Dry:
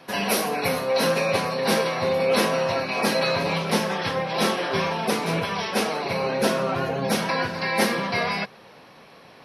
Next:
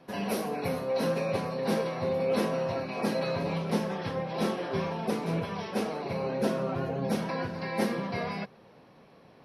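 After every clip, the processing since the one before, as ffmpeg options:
ffmpeg -i in.wav -af "tiltshelf=frequency=780:gain=6,volume=-8.5dB" out.wav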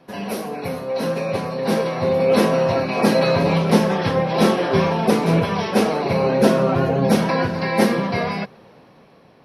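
ffmpeg -i in.wav -af "dynaudnorm=framelen=800:gausssize=5:maxgain=9.5dB,volume=4dB" out.wav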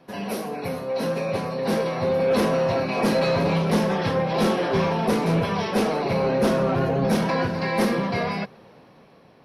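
ffmpeg -i in.wav -af "asoftclip=type=tanh:threshold=-12.5dB,volume=-2dB" out.wav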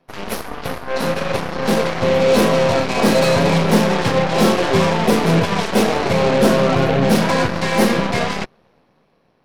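ffmpeg -i in.wav -af "aeval=exprs='0.188*(cos(1*acos(clip(val(0)/0.188,-1,1)))-cos(1*PI/2))+0.0237*(cos(3*acos(clip(val(0)/0.188,-1,1)))-cos(3*PI/2))+0.0211*(cos(7*acos(clip(val(0)/0.188,-1,1)))-cos(7*PI/2))+0.0168*(cos(8*acos(clip(val(0)/0.188,-1,1)))-cos(8*PI/2))':channel_layout=same,volume=7.5dB" out.wav

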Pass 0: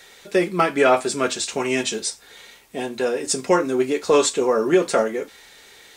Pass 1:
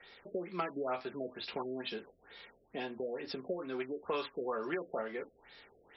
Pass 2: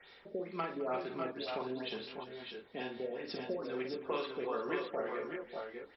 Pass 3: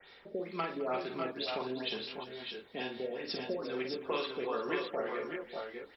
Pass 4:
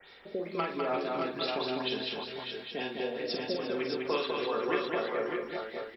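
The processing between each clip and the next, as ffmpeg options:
ffmpeg -i in.wav -filter_complex "[0:a]acrossover=split=150|820|4600[link_01][link_02][link_03][link_04];[link_01]acompressor=threshold=-53dB:ratio=4[link_05];[link_02]acompressor=threshold=-31dB:ratio=4[link_06];[link_03]acompressor=threshold=-29dB:ratio=4[link_07];[link_04]acompressor=threshold=-41dB:ratio=4[link_08];[link_05][link_06][link_07][link_08]amix=inputs=4:normalize=0,afftfilt=real='re*lt(b*sr/1024,680*pow(5700/680,0.5+0.5*sin(2*PI*2.2*pts/sr)))':imag='im*lt(b*sr/1024,680*pow(5700/680,0.5+0.5*sin(2*PI*2.2*pts/sr)))':win_size=1024:overlap=0.75,volume=-8.5dB" out.wav
ffmpeg -i in.wav -af "aecho=1:1:47|115|210|349|594|619:0.501|0.126|0.141|0.211|0.376|0.501,volume=-2dB" out.wav
ffmpeg -i in.wav -af "adynamicequalizer=threshold=0.00178:dfrequency=2500:dqfactor=0.7:tfrequency=2500:tqfactor=0.7:attack=5:release=100:ratio=0.375:range=3:mode=boostabove:tftype=highshelf,volume=1.5dB" out.wav
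ffmpeg -i in.wav -af "aecho=1:1:202:0.668,volume=2.5dB" out.wav

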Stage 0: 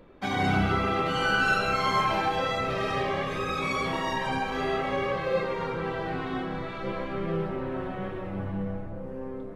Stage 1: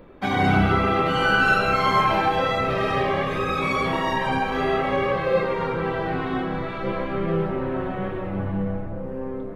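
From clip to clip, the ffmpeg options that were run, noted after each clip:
ffmpeg -i in.wav -af "equalizer=frequency=6500:width_type=o:width=1.5:gain=-7,volume=6dB" out.wav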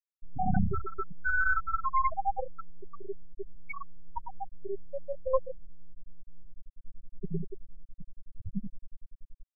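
ffmpeg -i in.wav -af "aeval=exprs='max(val(0),0)':channel_layout=same,afftfilt=real='re*gte(hypot(re,im),0.355)':imag='im*gte(hypot(re,im),0.355)':win_size=1024:overlap=0.75" out.wav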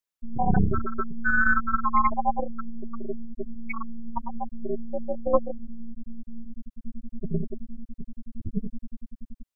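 ffmpeg -i in.wav -af "tremolo=f=230:d=0.519,volume=8dB" out.wav

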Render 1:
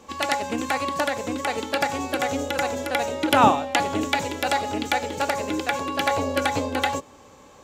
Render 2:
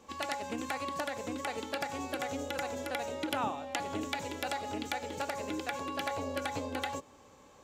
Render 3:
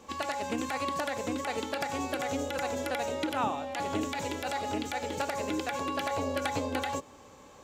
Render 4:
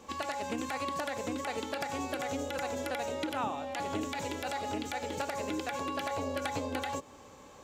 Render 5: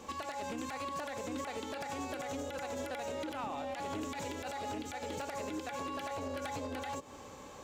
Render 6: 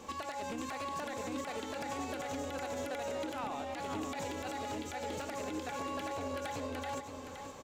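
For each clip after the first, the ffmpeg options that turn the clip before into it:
ffmpeg -i in.wav -af "acompressor=threshold=-24dB:ratio=3,volume=-8.5dB" out.wav
ffmpeg -i in.wav -af "alimiter=level_in=0.5dB:limit=-24dB:level=0:latency=1:release=58,volume=-0.5dB,volume=5dB" out.wav
ffmpeg -i in.wav -af "acompressor=threshold=-36dB:ratio=1.5" out.wav
ffmpeg -i in.wav -af "alimiter=level_in=8.5dB:limit=-24dB:level=0:latency=1:release=192,volume=-8.5dB,asoftclip=type=hard:threshold=-36.5dB,volume=3dB" out.wav
ffmpeg -i in.wav -af "aecho=1:1:519:0.398" out.wav

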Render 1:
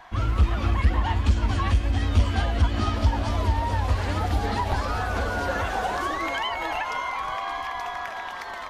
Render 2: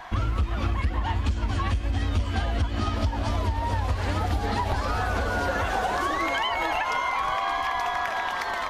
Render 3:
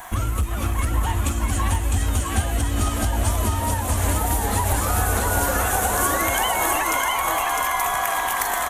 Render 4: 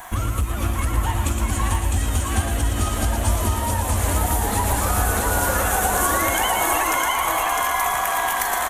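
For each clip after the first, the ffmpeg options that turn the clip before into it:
ffmpeg -i in.wav -af "acompressor=threshold=-29dB:ratio=6,volume=6.5dB" out.wav
ffmpeg -i in.wav -filter_complex "[0:a]aecho=1:1:656:0.708,acrossover=split=3100[link_01][link_02];[link_02]aexciter=amount=12.9:drive=6.6:freq=7100[link_03];[link_01][link_03]amix=inputs=2:normalize=0,volume=2dB" out.wav
ffmpeg -i in.wav -af "aecho=1:1:115:0.473" out.wav

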